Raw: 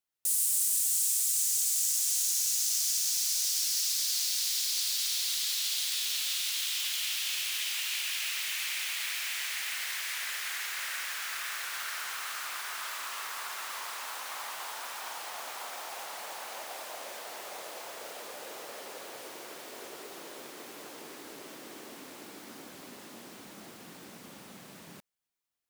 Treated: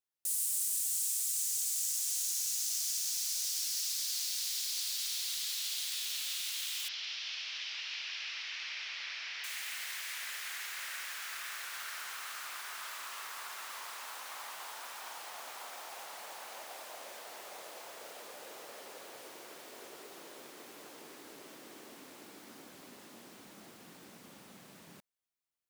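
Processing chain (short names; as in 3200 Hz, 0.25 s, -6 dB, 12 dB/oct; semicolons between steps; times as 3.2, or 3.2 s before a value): 6.88–9.44 elliptic low-pass 5500 Hz, stop band 50 dB; gain -5.5 dB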